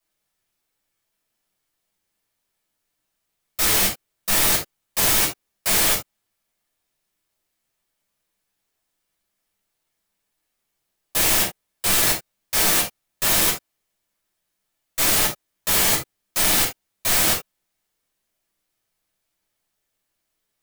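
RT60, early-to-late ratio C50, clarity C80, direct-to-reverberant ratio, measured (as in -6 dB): not exponential, 8.0 dB, 16.5 dB, -5.0 dB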